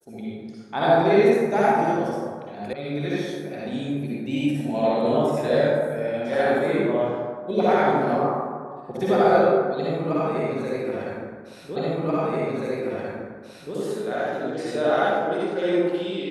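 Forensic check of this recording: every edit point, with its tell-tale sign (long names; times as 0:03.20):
0:02.73: cut off before it has died away
0:11.76: the same again, the last 1.98 s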